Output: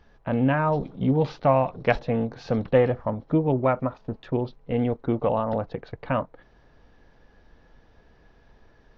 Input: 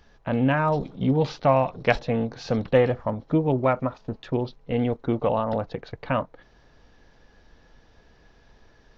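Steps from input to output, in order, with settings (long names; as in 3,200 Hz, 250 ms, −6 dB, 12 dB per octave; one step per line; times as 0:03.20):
high-shelf EQ 3,900 Hz −11.5 dB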